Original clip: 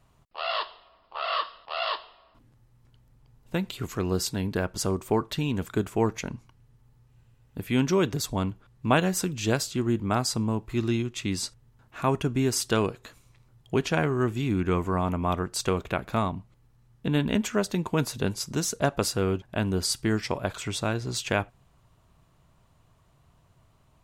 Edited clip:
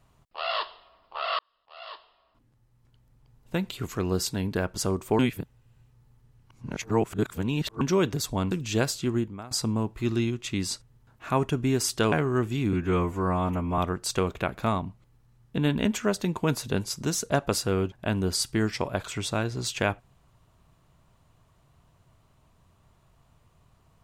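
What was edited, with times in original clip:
1.39–3.56 fade in
5.19–7.81 reverse
8.51–9.23 cut
9.88–10.23 fade out quadratic, to -19 dB
12.84–13.97 cut
14.58–15.28 stretch 1.5×

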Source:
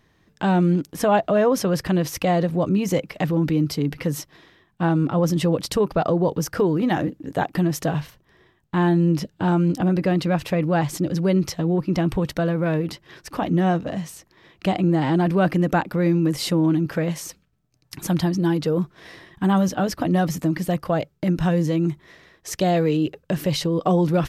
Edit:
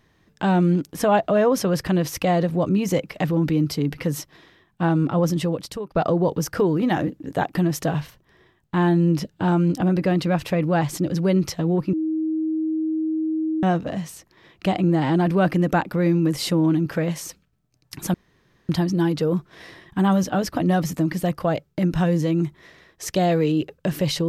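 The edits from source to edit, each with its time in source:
5.22–5.95 fade out, to -19 dB
11.93–13.63 bleep 316 Hz -20.5 dBFS
18.14 insert room tone 0.55 s

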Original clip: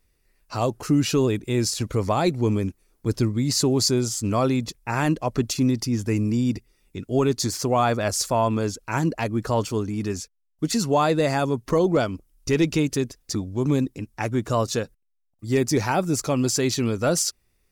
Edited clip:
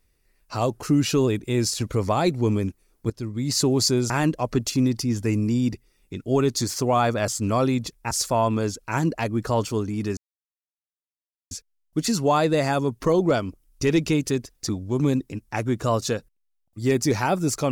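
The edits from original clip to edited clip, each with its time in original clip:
3.1–3.6 fade in, from -19.5 dB
4.1–4.93 move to 8.11
10.17 insert silence 1.34 s

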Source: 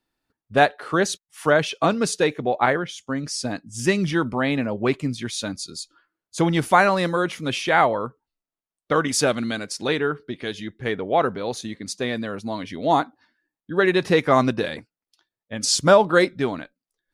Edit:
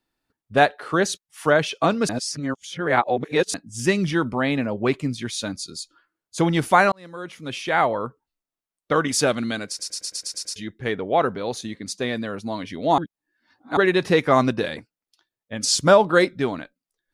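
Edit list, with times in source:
2.09–3.54 reverse
6.92–8.06 fade in
9.68 stutter in place 0.11 s, 8 plays
12.98–13.77 reverse

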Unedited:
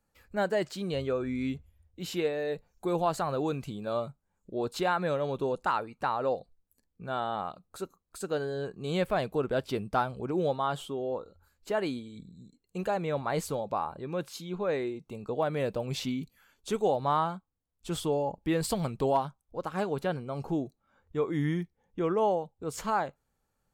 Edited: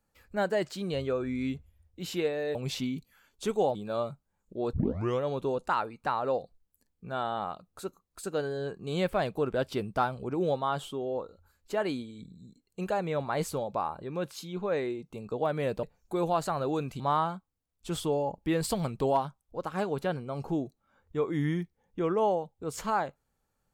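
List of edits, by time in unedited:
2.55–3.72 swap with 15.8–17
4.7 tape start 0.48 s

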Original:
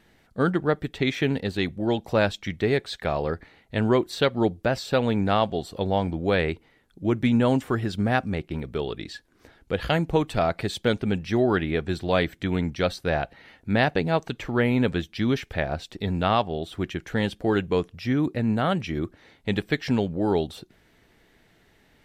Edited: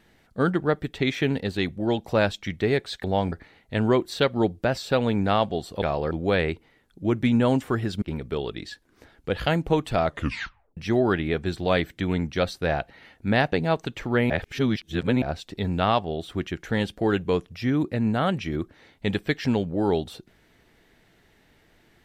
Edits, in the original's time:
3.04–3.33 swap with 5.83–6.11
8.02–8.45 cut
10.47 tape stop 0.73 s
14.73–15.65 reverse

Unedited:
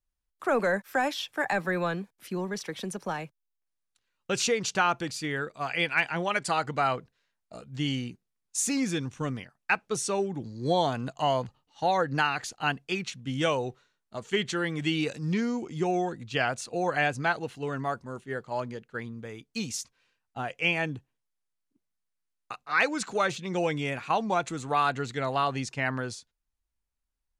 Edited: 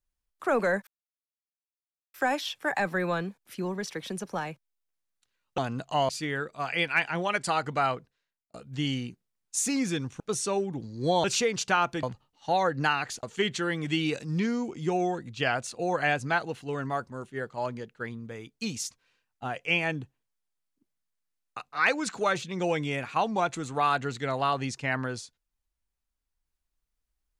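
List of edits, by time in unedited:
0.87 insert silence 1.27 s
4.31–5.1 swap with 10.86–11.37
6.86–7.55 fade out
9.21–9.82 cut
12.57–14.17 cut

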